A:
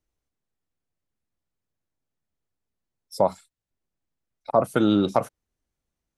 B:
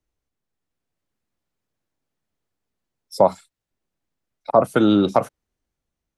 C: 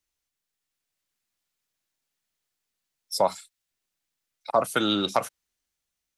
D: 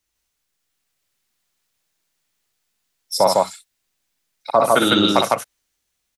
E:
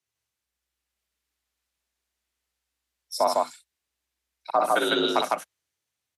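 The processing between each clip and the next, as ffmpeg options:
ffmpeg -i in.wav -filter_complex "[0:a]highshelf=frequency=6800:gain=-5,acrossover=split=160[link_01][link_02];[link_02]dynaudnorm=framelen=160:gausssize=9:maxgain=5dB[link_03];[link_01][link_03]amix=inputs=2:normalize=0,volume=1.5dB" out.wav
ffmpeg -i in.wav -af "tiltshelf=frequency=1200:gain=-9.5,volume=-2.5dB" out.wav
ffmpeg -i in.wav -af "aecho=1:1:58.31|154.5:0.562|0.891,volume=6dB" out.wav
ffmpeg -i in.wav -af "afreqshift=61,bass=frequency=250:gain=-5,treble=frequency=4000:gain=-3,volume=-6.5dB" -ar 32000 -c:a libmp3lame -b:a 112k out.mp3

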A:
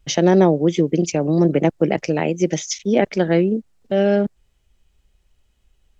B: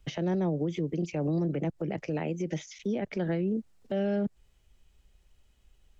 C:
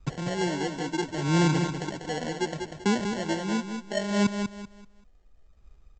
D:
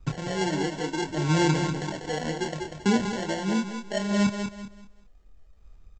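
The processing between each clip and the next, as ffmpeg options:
ffmpeg -i in.wav -filter_complex "[0:a]acrossover=split=190[link_01][link_02];[link_02]acompressor=threshold=-22dB:ratio=6[link_03];[link_01][link_03]amix=inputs=2:normalize=0,alimiter=limit=-21dB:level=0:latency=1:release=111,acrossover=split=3100[link_04][link_05];[link_05]acompressor=threshold=-50dB:ratio=4:attack=1:release=60[link_06];[link_04][link_06]amix=inputs=2:normalize=0,volume=-1.5dB" out.wav
ffmpeg -i in.wav -af "aphaser=in_gain=1:out_gain=1:delay=4.2:decay=0.65:speed=0.7:type=sinusoidal,aresample=16000,acrusher=samples=13:mix=1:aa=0.000001,aresample=44100,aecho=1:1:193|386|579|772:0.473|0.137|0.0398|0.0115,volume=-2dB" out.wav
ffmpeg -i in.wav -filter_complex "[0:a]aphaser=in_gain=1:out_gain=1:delay=2.6:decay=0.27:speed=1.7:type=triangular,asplit=2[link_01][link_02];[link_02]adelay=26,volume=-5.5dB[link_03];[link_01][link_03]amix=inputs=2:normalize=0" out.wav

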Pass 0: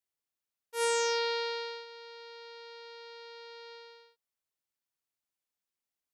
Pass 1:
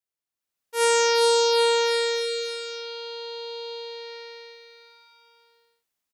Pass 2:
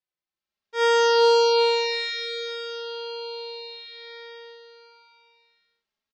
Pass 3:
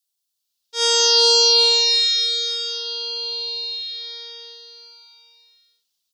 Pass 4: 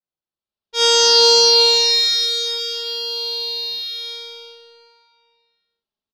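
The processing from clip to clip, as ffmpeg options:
ffmpeg -i in.wav -af "dynaudnorm=framelen=120:gausssize=9:maxgain=11dB,aecho=1:1:410|779|1111|1410|1679:0.631|0.398|0.251|0.158|0.1,volume=-2dB" out.wav
ffmpeg -i in.wav -filter_complex "[0:a]lowpass=frequency=5100:width=0.5412,lowpass=frequency=5100:width=1.3066,asplit=2[link_01][link_02];[link_02]adelay=3.5,afreqshift=0.57[link_03];[link_01][link_03]amix=inputs=2:normalize=1,volume=3dB" out.wav
ffmpeg -i in.wav -af "aexciter=amount=13:drive=1.1:freq=3100,volume=-4.5dB" out.wav
ffmpeg -i in.wav -af "adynamicequalizer=threshold=0.0316:dfrequency=3200:dqfactor=1.4:tfrequency=3200:tqfactor=1.4:attack=5:release=100:ratio=0.375:range=2.5:mode=cutabove:tftype=bell,adynamicsmooth=sensitivity=8:basefreq=1300,lowpass=7000,volume=5dB" out.wav

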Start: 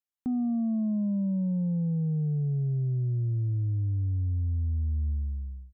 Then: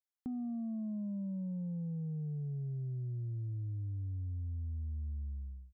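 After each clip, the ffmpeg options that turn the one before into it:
ffmpeg -i in.wav -af "acompressor=threshold=-30dB:ratio=6,volume=-7dB" out.wav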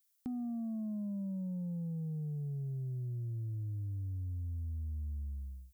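ffmpeg -i in.wav -af "crystalizer=i=6.5:c=0" out.wav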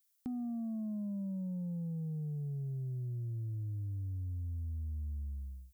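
ffmpeg -i in.wav -af anull out.wav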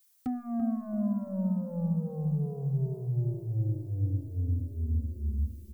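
ffmpeg -i in.wav -filter_complex "[0:a]aeval=exprs='0.0266*(cos(1*acos(clip(val(0)/0.0266,-1,1)))-cos(1*PI/2))+0.00422*(cos(5*acos(clip(val(0)/0.0266,-1,1)))-cos(5*PI/2))+0.00075*(cos(7*acos(clip(val(0)/0.0266,-1,1)))-cos(7*PI/2))+0.000266*(cos(8*acos(clip(val(0)/0.0266,-1,1)))-cos(8*PI/2))':channel_layout=same,asplit=2[link_01][link_02];[link_02]adelay=337,lowpass=frequency=890:poles=1,volume=-6dB,asplit=2[link_03][link_04];[link_04]adelay=337,lowpass=frequency=890:poles=1,volume=0.51,asplit=2[link_05][link_06];[link_06]adelay=337,lowpass=frequency=890:poles=1,volume=0.51,asplit=2[link_07][link_08];[link_08]adelay=337,lowpass=frequency=890:poles=1,volume=0.51,asplit=2[link_09][link_10];[link_10]adelay=337,lowpass=frequency=890:poles=1,volume=0.51,asplit=2[link_11][link_12];[link_12]adelay=337,lowpass=frequency=890:poles=1,volume=0.51[link_13];[link_01][link_03][link_05][link_07][link_09][link_11][link_13]amix=inputs=7:normalize=0,asplit=2[link_14][link_15];[link_15]adelay=2.9,afreqshift=2.1[link_16];[link_14][link_16]amix=inputs=2:normalize=1,volume=8.5dB" out.wav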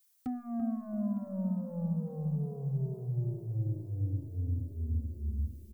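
ffmpeg -i in.wav -af "aecho=1:1:909|1818|2727:0.119|0.0499|0.021,volume=-3.5dB" out.wav

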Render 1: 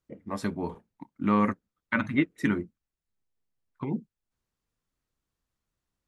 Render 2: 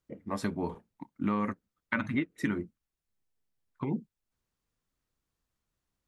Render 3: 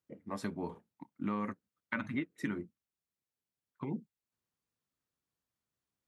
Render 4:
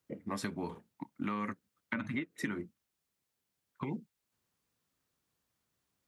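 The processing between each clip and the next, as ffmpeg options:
ffmpeg -i in.wav -af "acompressor=threshold=-26dB:ratio=6" out.wav
ffmpeg -i in.wav -af "highpass=97,volume=-5.5dB" out.wav
ffmpeg -i in.wav -filter_complex "[0:a]acrossover=split=480|1200[link_01][link_02][link_03];[link_01]acompressor=threshold=-45dB:ratio=4[link_04];[link_02]acompressor=threshold=-57dB:ratio=4[link_05];[link_03]acompressor=threshold=-47dB:ratio=4[link_06];[link_04][link_05][link_06]amix=inputs=3:normalize=0,volume=8dB" out.wav

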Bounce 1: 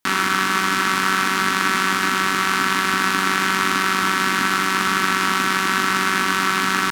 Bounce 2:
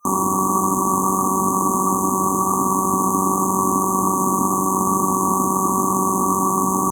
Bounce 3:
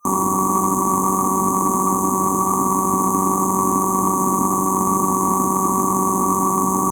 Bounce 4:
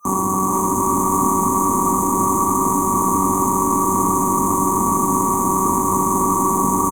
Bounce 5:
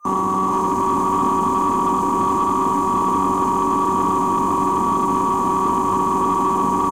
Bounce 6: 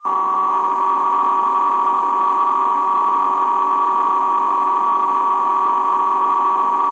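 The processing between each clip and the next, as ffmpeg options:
ffmpeg -i in.wav -af "afftfilt=real='re*(1-between(b*sr/4096,1200,6100))':imag='im*(1-between(b*sr/4096,1200,6100))':win_size=4096:overlap=0.75,equalizer=frequency=91:width=4.4:gain=3,volume=6dB" out.wav
ffmpeg -i in.wav -af "aeval=exprs='0.841*(cos(1*acos(clip(val(0)/0.841,-1,1)))-cos(1*PI/2))+0.015*(cos(4*acos(clip(val(0)/0.841,-1,1)))-cos(4*PI/2))+0.0168*(cos(5*acos(clip(val(0)/0.841,-1,1)))-cos(5*PI/2))':channel_layout=same" out.wav
ffmpeg -i in.wav -filter_complex "[0:a]acrossover=split=120[link_01][link_02];[link_02]alimiter=limit=-14.5dB:level=0:latency=1:release=29[link_03];[link_01][link_03]amix=inputs=2:normalize=0,aecho=1:1:460|736|901.6|1001|1061:0.631|0.398|0.251|0.158|0.1,volume=4.5dB" out.wav
ffmpeg -i in.wav -filter_complex "[0:a]acrossover=split=1200[link_01][link_02];[link_02]asoftclip=type=tanh:threshold=-24.5dB[link_03];[link_01][link_03]amix=inputs=2:normalize=0,asplit=2[link_04][link_05];[link_05]highpass=frequency=720:poles=1,volume=11dB,asoftclip=type=tanh:threshold=-6.5dB[link_06];[link_04][link_06]amix=inputs=2:normalize=0,lowpass=frequency=1200:poles=1,volume=-6dB" out.wav
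ffmpeg -i in.wav -af "highpass=740,lowpass=2500,volume=4dB" -ar 22050 -c:a wmav2 -b:a 128k out.wma

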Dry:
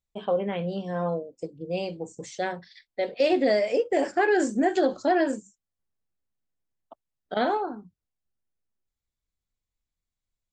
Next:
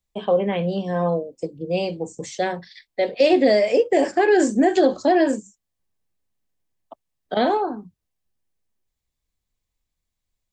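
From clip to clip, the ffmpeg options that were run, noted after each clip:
ffmpeg -i in.wav -filter_complex "[0:a]bandreject=frequency=1400:width=8.7,acrossover=split=240|770|2200[link_01][link_02][link_03][link_04];[link_03]alimiter=level_in=6dB:limit=-24dB:level=0:latency=1,volume=-6dB[link_05];[link_01][link_02][link_05][link_04]amix=inputs=4:normalize=0,volume=6.5dB" out.wav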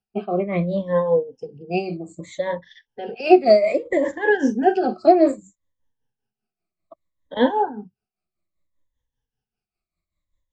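ffmpeg -i in.wav -af "afftfilt=real='re*pow(10,20/40*sin(2*PI*(1.1*log(max(b,1)*sr/1024/100)/log(2)-(-0.63)*(pts-256)/sr)))':imag='im*pow(10,20/40*sin(2*PI*(1.1*log(max(b,1)*sr/1024/100)/log(2)-(-0.63)*(pts-256)/sr)))':win_size=1024:overlap=0.75,aemphasis=mode=reproduction:type=75fm,tremolo=f=5.1:d=0.66,volume=-1.5dB" out.wav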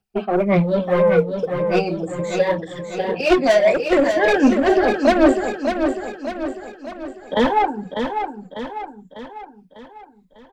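ffmpeg -i in.wav -filter_complex "[0:a]asoftclip=type=tanh:threshold=-19dB,aphaser=in_gain=1:out_gain=1:delay=3.9:decay=0.46:speed=1.9:type=sinusoidal,asplit=2[link_01][link_02];[link_02]aecho=0:1:598|1196|1794|2392|2990|3588:0.473|0.241|0.123|0.0628|0.032|0.0163[link_03];[link_01][link_03]amix=inputs=2:normalize=0,volume=6dB" out.wav

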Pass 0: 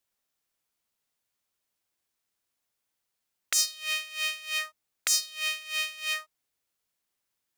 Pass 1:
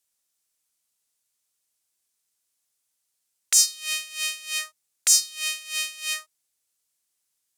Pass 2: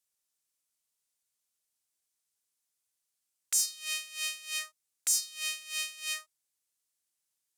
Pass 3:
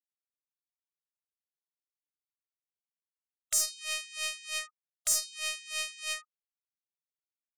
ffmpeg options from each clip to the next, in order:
ffmpeg -i in.wav -af "equalizer=frequency=8600:width_type=o:width=2:gain=14,volume=-4dB" out.wav
ffmpeg -i in.wav -filter_complex "[0:a]acrossover=split=7600[link_01][link_02];[link_01]alimiter=limit=-15.5dB:level=0:latency=1[link_03];[link_02]acrusher=bits=5:mode=log:mix=0:aa=0.000001[link_04];[link_03][link_04]amix=inputs=2:normalize=0,volume=-6.5dB" out.wav
ffmpeg -i in.wav -af "aeval=exprs='0.282*(cos(1*acos(clip(val(0)/0.282,-1,1)))-cos(1*PI/2))+0.0398*(cos(4*acos(clip(val(0)/0.282,-1,1)))-cos(4*PI/2))+0.0398*(cos(6*acos(clip(val(0)/0.282,-1,1)))-cos(6*PI/2))':channel_layout=same,afftfilt=real='re*gte(hypot(re,im),0.00631)':imag='im*gte(hypot(re,im),0.00631)':win_size=1024:overlap=0.75" out.wav

